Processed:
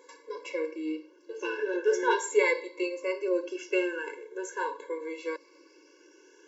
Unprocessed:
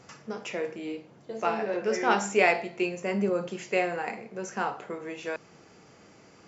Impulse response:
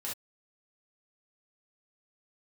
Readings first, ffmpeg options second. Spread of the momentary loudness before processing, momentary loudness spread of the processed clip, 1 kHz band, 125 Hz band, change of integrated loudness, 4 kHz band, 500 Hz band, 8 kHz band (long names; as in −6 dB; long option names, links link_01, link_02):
14 LU, 13 LU, −5.0 dB, below −35 dB, −1.5 dB, −2.5 dB, 0.0 dB, can't be measured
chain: -af "afftfilt=real='re*pow(10,9/40*sin(2*PI*(1*log(max(b,1)*sr/1024/100)/log(2)-(0.42)*(pts-256)/sr)))':imag='im*pow(10,9/40*sin(2*PI*(1*log(max(b,1)*sr/1024/100)/log(2)-(0.42)*(pts-256)/sr)))':win_size=1024:overlap=0.75,afftfilt=real='re*eq(mod(floor(b*sr/1024/290),2),1)':imag='im*eq(mod(floor(b*sr/1024/290),2),1)':win_size=1024:overlap=0.75"